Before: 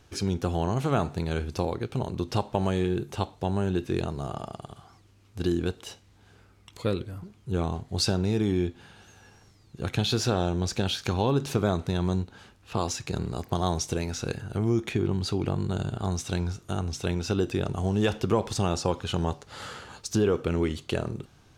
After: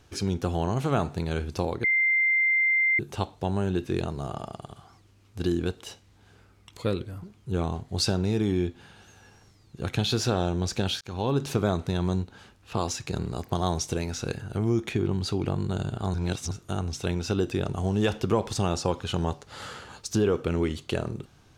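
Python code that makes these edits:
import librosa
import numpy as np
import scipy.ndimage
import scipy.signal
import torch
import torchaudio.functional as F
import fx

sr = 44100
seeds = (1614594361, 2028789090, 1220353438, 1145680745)

y = fx.edit(x, sr, fx.bleep(start_s=1.84, length_s=1.15, hz=2090.0, db=-19.5),
    fx.fade_in_span(start_s=11.01, length_s=0.45, curve='qsin'),
    fx.reverse_span(start_s=16.14, length_s=0.37), tone=tone)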